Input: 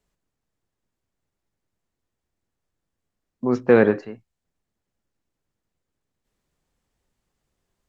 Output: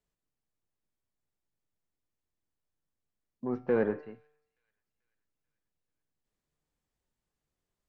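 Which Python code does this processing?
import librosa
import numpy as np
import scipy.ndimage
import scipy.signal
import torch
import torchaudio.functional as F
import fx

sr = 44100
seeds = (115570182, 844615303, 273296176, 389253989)

p1 = fx.env_lowpass_down(x, sr, base_hz=1900.0, full_db=-17.0)
p2 = 10.0 ** (-14.0 / 20.0) * np.tanh(p1 / 10.0 ** (-14.0 / 20.0))
p3 = p1 + (p2 * librosa.db_to_amplitude(-3.0))
p4 = fx.comb_fb(p3, sr, f0_hz=150.0, decay_s=0.76, harmonics='all', damping=0.0, mix_pct=60)
p5 = fx.echo_wet_highpass(p4, sr, ms=438, feedback_pct=52, hz=4400.0, wet_db=-20)
y = p5 * librosa.db_to_amplitude(-8.0)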